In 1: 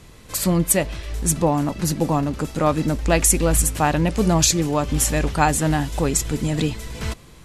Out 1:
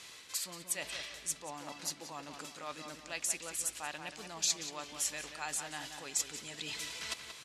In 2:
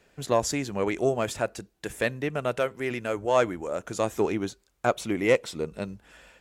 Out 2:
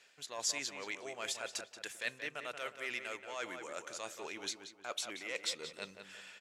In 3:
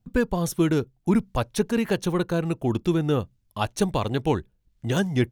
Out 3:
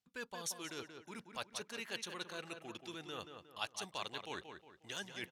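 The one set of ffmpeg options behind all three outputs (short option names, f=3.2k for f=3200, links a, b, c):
-filter_complex "[0:a]areverse,acompressor=threshold=-31dB:ratio=12,areverse,bandpass=f=4.4k:t=q:w=0.69:csg=0,asplit=2[a][b];[b]adelay=180,lowpass=f=3k:p=1,volume=-7dB,asplit=2[c][d];[d]adelay=180,lowpass=f=3k:p=1,volume=0.4,asplit=2[e][f];[f]adelay=180,lowpass=f=3k:p=1,volume=0.4,asplit=2[g][h];[h]adelay=180,lowpass=f=3k:p=1,volume=0.4,asplit=2[i][j];[j]adelay=180,lowpass=f=3k:p=1,volume=0.4[k];[a][c][e][g][i][k]amix=inputs=6:normalize=0,volume=4.5dB"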